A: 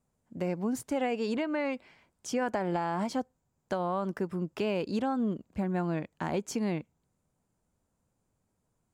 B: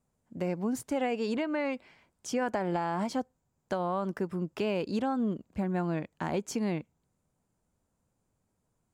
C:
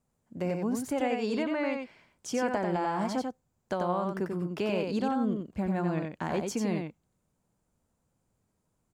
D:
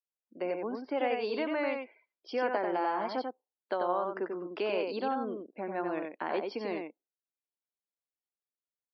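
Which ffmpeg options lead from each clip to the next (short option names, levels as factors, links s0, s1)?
-af anull
-af "aecho=1:1:91:0.596"
-af "highpass=f=310:w=0.5412,highpass=f=310:w=1.3066,afftdn=nr=28:nf=-53,aresample=11025,aresample=44100"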